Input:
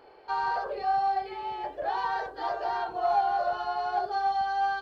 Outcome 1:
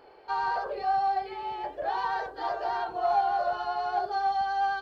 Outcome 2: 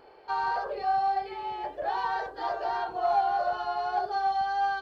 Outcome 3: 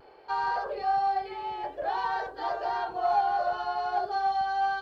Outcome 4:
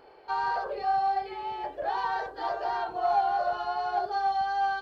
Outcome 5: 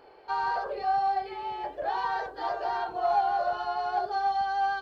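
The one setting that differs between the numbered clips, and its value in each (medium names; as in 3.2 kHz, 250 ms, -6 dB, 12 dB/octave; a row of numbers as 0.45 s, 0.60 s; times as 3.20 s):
vibrato, rate: 10 Hz, 1.8 Hz, 0.39 Hz, 2.7 Hz, 6.4 Hz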